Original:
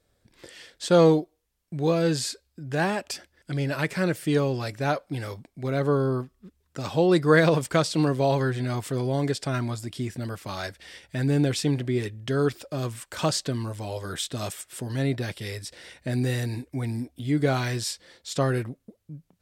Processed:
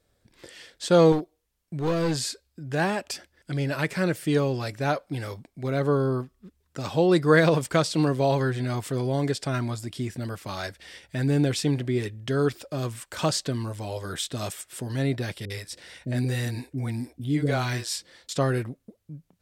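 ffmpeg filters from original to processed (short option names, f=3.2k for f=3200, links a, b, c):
-filter_complex "[0:a]asettb=1/sr,asplit=3[a][b][c];[a]atrim=end=1.124[d];[b]atrim=start=1.12:end=2.17,asetpts=PTS-STARTPTS,afade=t=in:d=0.004:c=qsin,afade=t=out:st=1.046:d=0.004:c=qsin,aeval=exprs='clip(val(0),-1,0.0596)':c=same[e];[c]atrim=start=2.166[f];[d][e]acrossfade=d=0.004:c1=hsin:c2=qsin[g];[g][f]acrossfade=d=0.004:c1=qsin:c2=hsin,asettb=1/sr,asplit=3[h][i][j];[h]atrim=end=15.454[k];[i]atrim=start=15.45:end=18.29,asetpts=PTS-STARTPTS,afade=t=in:d=0.004:c=qsin,afade=t=out:st=2.836:d=0.004:c=qsin,acrossover=split=450[l][m];[m]adelay=50[n];[l][n]amix=inputs=2:normalize=0,atrim=end_sample=125244[o];[j]atrim=start=18.286[p];[k][o]acrossfade=d=0.004:c1=hsin:c2=qsin[q];[q][p]acrossfade=d=0.004:c1=qsin:c2=hsin"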